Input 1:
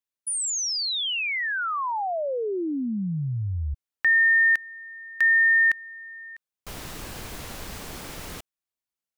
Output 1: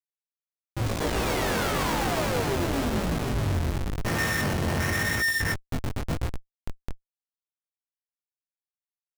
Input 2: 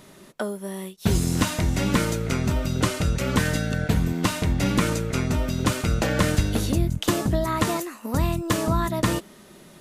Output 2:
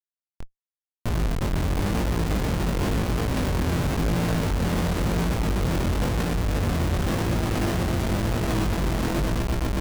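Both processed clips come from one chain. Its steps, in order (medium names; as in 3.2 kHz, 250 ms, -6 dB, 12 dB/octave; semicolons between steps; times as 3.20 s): hum notches 60/120/180/240/300/360/420 Hz; in parallel at -4 dB: saturation -23 dBFS; on the sum: echo with a slow build-up 123 ms, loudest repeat 5, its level -6 dB; Schmitt trigger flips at -14.5 dBFS; chorus 0.95 Hz, delay 17 ms, depth 6.2 ms; trim -3.5 dB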